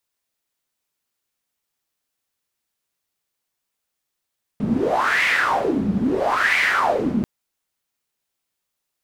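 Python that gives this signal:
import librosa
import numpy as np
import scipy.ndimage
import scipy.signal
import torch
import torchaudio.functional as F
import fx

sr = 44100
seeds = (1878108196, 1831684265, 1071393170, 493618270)

y = fx.wind(sr, seeds[0], length_s=2.64, low_hz=200.0, high_hz=2100.0, q=6.6, gusts=2, swing_db=3.5)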